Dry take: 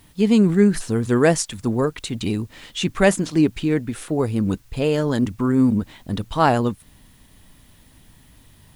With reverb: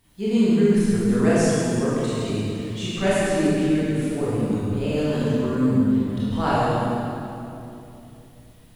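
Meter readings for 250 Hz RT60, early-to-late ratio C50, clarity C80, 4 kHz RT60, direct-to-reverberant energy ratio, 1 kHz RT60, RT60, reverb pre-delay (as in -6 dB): 3.5 s, -5.0 dB, -3.5 dB, 2.2 s, -10.0 dB, 2.6 s, 2.9 s, 22 ms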